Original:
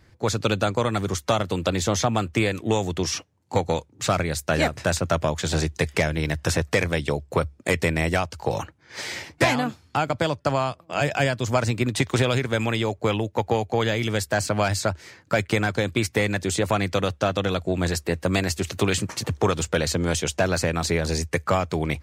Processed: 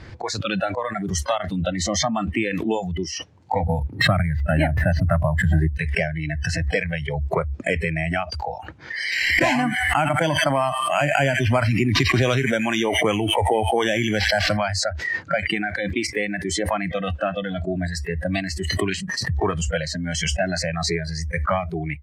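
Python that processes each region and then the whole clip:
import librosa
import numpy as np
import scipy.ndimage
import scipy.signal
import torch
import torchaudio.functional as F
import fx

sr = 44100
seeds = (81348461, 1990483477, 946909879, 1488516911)

y = fx.chain(x, sr, fx.bass_treble(bass_db=7, treble_db=-10),
    fx.resample_bad(factor=4, down='none', up='hold'), at=(3.63, 5.77))
y = fx.chain(y, sr, fx.sample_hold(seeds[0], rate_hz=9400.0, jitter_pct=0),
    fx.echo_wet_highpass(ms=86, feedback_pct=46, hz=1500.0, wet_db=-11),
    fx.env_flatten(amount_pct=50), at=(9.12, 14.57))
y = fx.noise_reduce_blind(y, sr, reduce_db=25)
y = scipy.signal.sosfilt(scipy.signal.butter(2, 4900.0, 'lowpass', fs=sr, output='sos'), y)
y = fx.pre_swell(y, sr, db_per_s=25.0)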